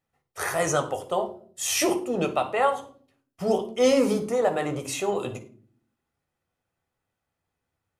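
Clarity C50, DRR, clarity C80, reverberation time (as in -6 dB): 12.0 dB, 5.5 dB, 17.0 dB, 0.45 s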